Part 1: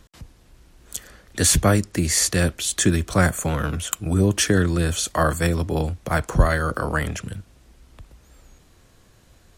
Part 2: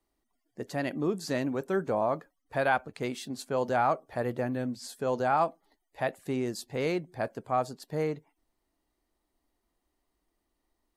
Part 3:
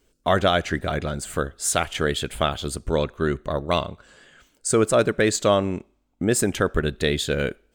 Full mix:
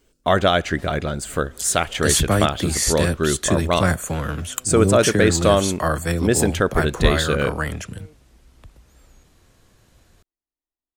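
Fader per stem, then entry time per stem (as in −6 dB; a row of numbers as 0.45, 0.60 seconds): −1.5, −19.5, +2.5 decibels; 0.65, 0.00, 0.00 seconds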